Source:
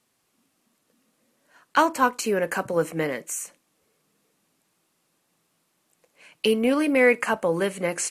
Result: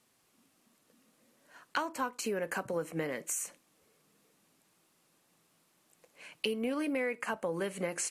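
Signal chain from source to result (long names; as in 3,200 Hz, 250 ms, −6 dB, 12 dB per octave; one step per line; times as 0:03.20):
downward compressor 5 to 1, threshold −32 dBFS, peak gain reduction 17 dB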